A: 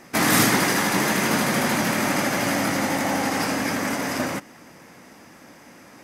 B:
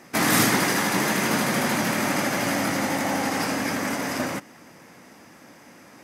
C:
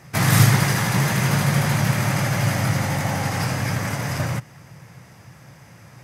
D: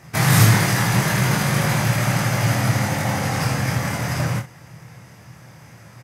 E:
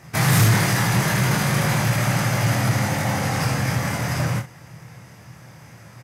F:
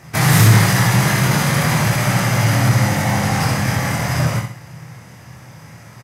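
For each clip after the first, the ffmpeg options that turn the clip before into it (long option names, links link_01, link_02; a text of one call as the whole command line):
ffmpeg -i in.wav -af "highpass=64,volume=-1.5dB" out.wav
ffmpeg -i in.wav -af "lowshelf=frequency=180:width_type=q:width=3:gain=12" out.wav
ffmpeg -i in.wav -af "aecho=1:1:25|63:0.668|0.266" out.wav
ffmpeg -i in.wav -af "asoftclip=type=tanh:threshold=-9.5dB" out.wav
ffmpeg -i in.wav -af "aecho=1:1:64|128|192|256|320:0.447|0.174|0.0679|0.0265|0.0103,volume=3.5dB" out.wav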